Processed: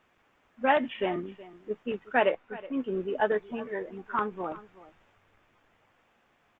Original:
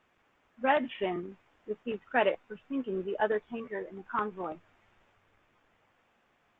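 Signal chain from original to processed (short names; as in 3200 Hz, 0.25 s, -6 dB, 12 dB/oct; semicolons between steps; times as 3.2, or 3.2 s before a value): 2.2–2.77 tone controls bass -2 dB, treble -8 dB; echo 0.371 s -18.5 dB; gain +2.5 dB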